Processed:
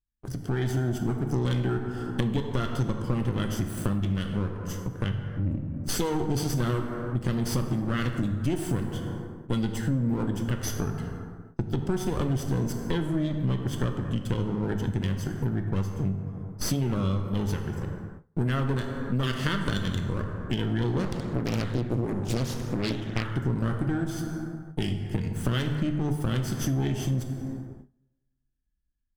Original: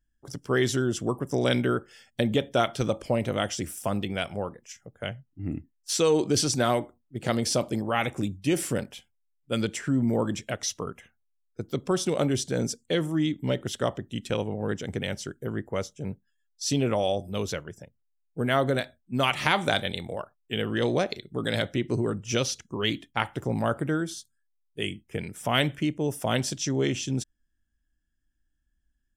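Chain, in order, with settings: minimum comb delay 0.63 ms; low shelf 360 Hz +11.5 dB; plate-style reverb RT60 1.5 s, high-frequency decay 0.5×, DRR 5 dB; compressor 4:1, threshold -33 dBFS, peak gain reduction 17.5 dB; gate with hold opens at -39 dBFS; AGC gain up to 6 dB; 21.03–23.31 Doppler distortion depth 0.85 ms

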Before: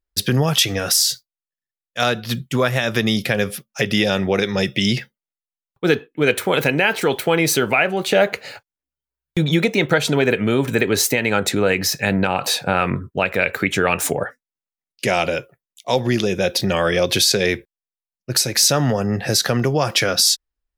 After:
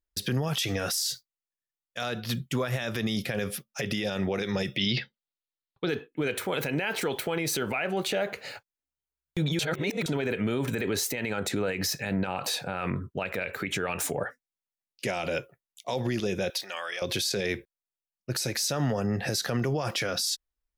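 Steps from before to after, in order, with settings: limiter -14.5 dBFS, peak gain reduction 10.5 dB; 4.77–5.89 resonant high shelf 6000 Hz -14 dB, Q 3; 9.59–10.06 reverse; 16.5–17.02 HPF 980 Hz 12 dB/oct; gain -5 dB

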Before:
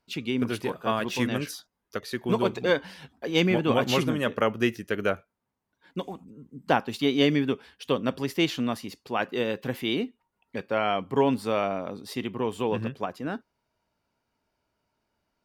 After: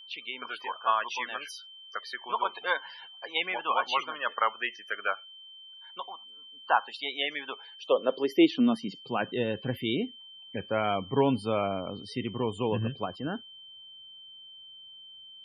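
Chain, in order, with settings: loudest bins only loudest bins 64; high-pass sweep 1000 Hz -> 86 Hz, 7.42–9.51; whine 3100 Hz -44 dBFS; gain -2.5 dB

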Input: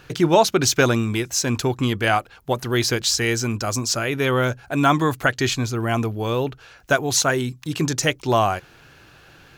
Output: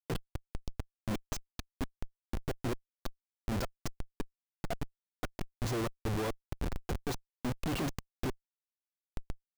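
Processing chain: HPF 84 Hz 6 dB/oct; low shelf 130 Hz -8.5 dB; flipped gate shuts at -13 dBFS, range -32 dB; Schmitt trigger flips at -38.5 dBFS; de-esser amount 80%; gain +4 dB

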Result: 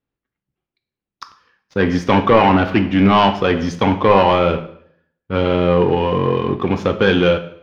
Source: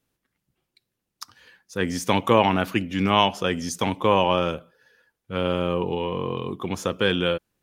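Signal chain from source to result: sample leveller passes 3; air absorption 270 m; reverb RT60 0.65 s, pre-delay 3 ms, DRR 7 dB

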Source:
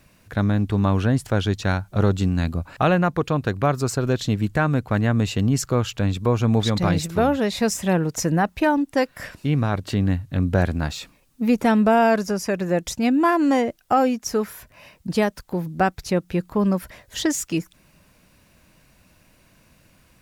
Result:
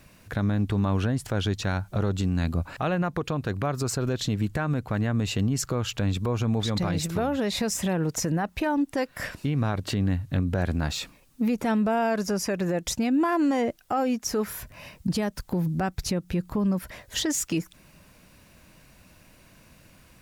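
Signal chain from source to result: 14.46–16.79 tone controls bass +6 dB, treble +2 dB; compressor 2.5:1, threshold -23 dBFS, peak gain reduction 7.5 dB; limiter -19.5 dBFS, peak gain reduction 8.5 dB; gain +2 dB

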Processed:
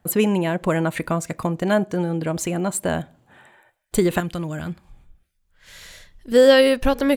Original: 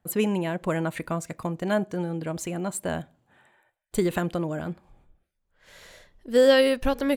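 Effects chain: 4.2–6.32 bell 520 Hz -11.5 dB 2.7 oct; in parallel at -1 dB: compressor, threshold -35 dBFS, peak gain reduction 20 dB; on the sum: gain +4 dB

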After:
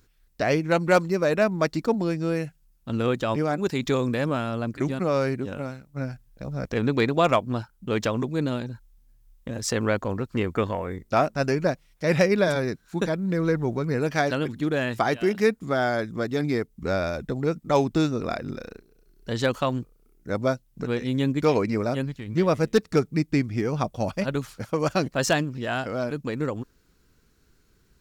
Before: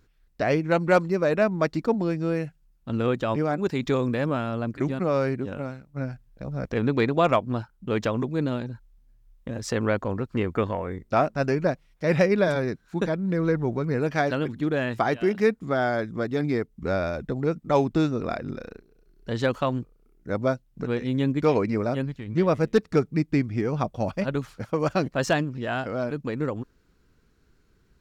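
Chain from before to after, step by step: high shelf 4600 Hz +10.5 dB

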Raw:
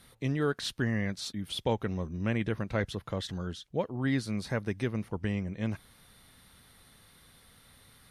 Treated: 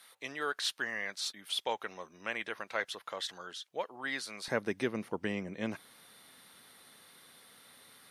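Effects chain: HPF 790 Hz 12 dB/oct, from 4.48 s 280 Hz; gain +2 dB

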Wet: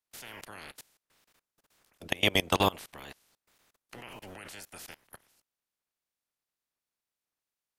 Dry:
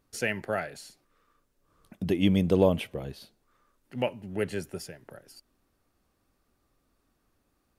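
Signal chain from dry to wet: spectral limiter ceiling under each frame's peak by 30 dB; wow and flutter 61 cents; level quantiser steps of 23 dB

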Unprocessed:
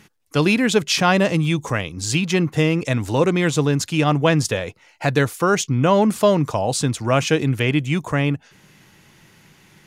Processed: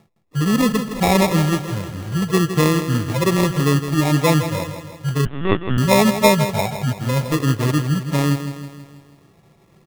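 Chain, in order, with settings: median-filter separation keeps harmonic; in parallel at -6 dB: crossover distortion -32.5 dBFS; on the sum: sample-and-hold 29×; on a send: feedback echo 0.162 s, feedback 53%, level -10 dB; 5.25–5.78 on the sum: LPC vocoder at 8 kHz pitch kept; gain -1 dB

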